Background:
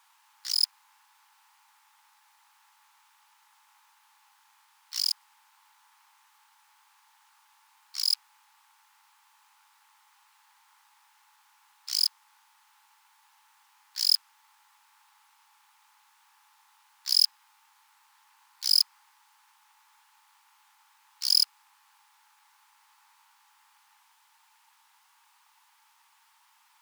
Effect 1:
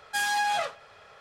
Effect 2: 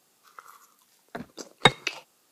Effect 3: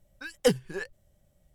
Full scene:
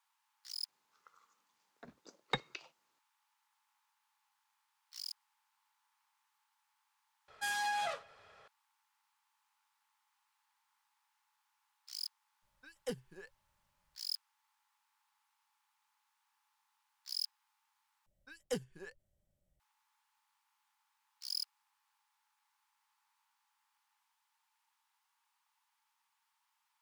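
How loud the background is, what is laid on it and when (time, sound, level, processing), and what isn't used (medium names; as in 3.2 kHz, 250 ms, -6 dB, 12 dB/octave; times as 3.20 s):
background -17 dB
0.68 s: add 2 -17.5 dB + steep low-pass 7.2 kHz
7.28 s: replace with 1 -9 dB
12.42 s: add 3 -17.5 dB
18.06 s: replace with 3 -15 dB + dynamic bell 7 kHz, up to +6 dB, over -56 dBFS, Q 4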